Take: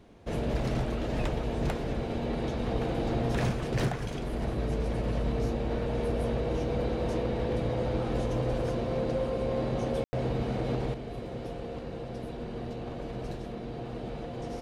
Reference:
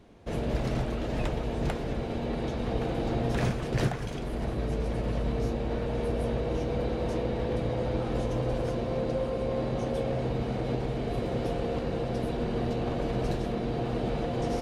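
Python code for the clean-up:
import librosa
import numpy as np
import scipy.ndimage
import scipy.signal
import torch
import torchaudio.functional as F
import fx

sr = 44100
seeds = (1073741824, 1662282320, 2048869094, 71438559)

y = fx.fix_declip(x, sr, threshold_db=-22.0)
y = fx.fix_ambience(y, sr, seeds[0], print_start_s=0.0, print_end_s=0.5, start_s=10.04, end_s=10.13)
y = fx.fix_level(y, sr, at_s=10.94, step_db=7.5)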